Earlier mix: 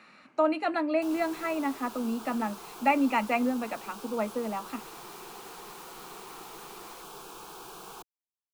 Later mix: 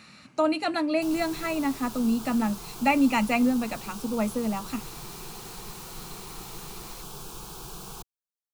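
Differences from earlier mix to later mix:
background: add high-shelf EQ 2,900 Hz −8 dB
master: remove three-way crossover with the lows and the highs turned down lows −20 dB, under 260 Hz, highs −14 dB, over 2,600 Hz

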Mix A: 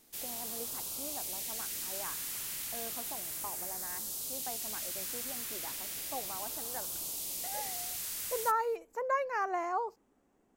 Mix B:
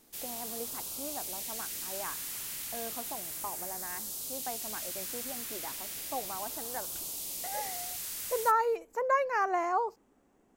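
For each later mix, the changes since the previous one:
speech +4.0 dB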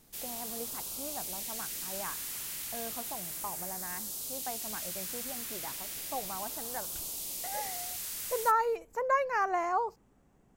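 speech: add low shelf with overshoot 200 Hz +9 dB, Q 1.5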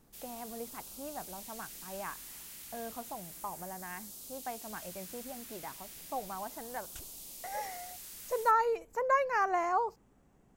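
background −9.0 dB

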